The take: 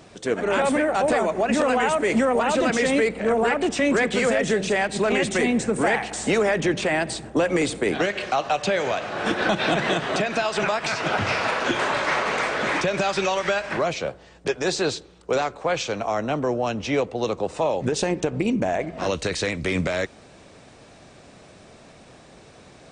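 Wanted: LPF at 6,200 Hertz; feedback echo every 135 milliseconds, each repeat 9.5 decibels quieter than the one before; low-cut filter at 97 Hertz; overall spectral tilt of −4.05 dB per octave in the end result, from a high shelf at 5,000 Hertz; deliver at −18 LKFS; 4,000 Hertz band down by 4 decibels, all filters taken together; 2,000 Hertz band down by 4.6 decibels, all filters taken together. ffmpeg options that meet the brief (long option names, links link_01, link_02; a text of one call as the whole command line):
ffmpeg -i in.wav -af "highpass=97,lowpass=6200,equalizer=frequency=2000:width_type=o:gain=-5.5,equalizer=frequency=4000:width_type=o:gain=-4.5,highshelf=frequency=5000:gain=4.5,aecho=1:1:135|270|405|540:0.335|0.111|0.0365|0.012,volume=6dB" out.wav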